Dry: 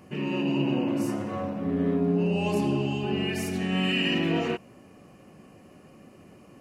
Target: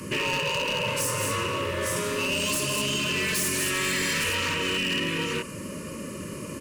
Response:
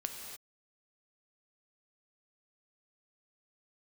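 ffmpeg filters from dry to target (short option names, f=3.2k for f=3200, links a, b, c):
-filter_complex "[0:a]equalizer=f=9k:w=0.77:g=11.5,aecho=1:1:49|153|213|854:0.335|0.224|0.376|0.316,acontrast=46,asettb=1/sr,asplit=3[a][b][c];[a]atrim=end=1.964[d];[b]atrim=start=1.96:end=4.24,asetpts=PTS-STARTPTS,afade=t=in:d=0.004:c=qsin,afade=t=out:st=2.276:d=0.004:c=qsin,tiltshelf=f=1.4k:g=-7[e];[c]atrim=start=4.236[f];[d][e]acrossfade=d=0.004:c1=hsin:c2=qsin[g];[g][f]acrossfade=d=0.004:c1=qsin:c2=hsin,afftfilt=real='re*lt(hypot(re,im),0.316)':imag='im*lt(hypot(re,im),0.316)':win_size=1024:overlap=0.75,acrossover=split=140|520|1600[h][i][j][k];[h]acompressor=threshold=-46dB:ratio=4[l];[i]acompressor=threshold=-43dB:ratio=4[m];[j]acompressor=threshold=-39dB:ratio=4[n];[k]acompressor=threshold=-35dB:ratio=4[o];[l][m][n][o]amix=inputs=4:normalize=0,aeval=exprs='0.0355*(abs(mod(val(0)/0.0355+3,4)-2)-1)':c=same,asuperstop=centerf=750:order=20:qfactor=2.9,volume=8.5dB"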